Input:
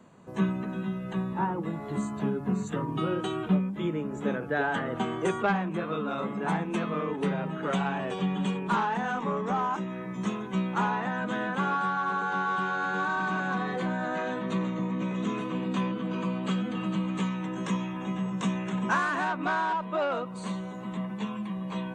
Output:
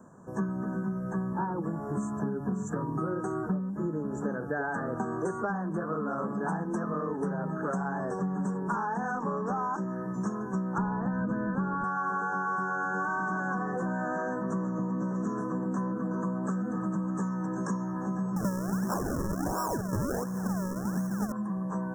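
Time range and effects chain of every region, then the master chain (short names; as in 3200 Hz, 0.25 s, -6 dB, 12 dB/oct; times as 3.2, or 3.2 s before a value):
10.78–11.84 RIAA curve playback + notch 750 Hz, Q 18
18.36–21.32 tilt -2 dB/oct + decimation with a swept rate 40× 1.4 Hz
whole clip: compressor 5:1, threshold -30 dBFS; Chebyshev band-stop 1700–5400 Hz, order 5; gain +2.5 dB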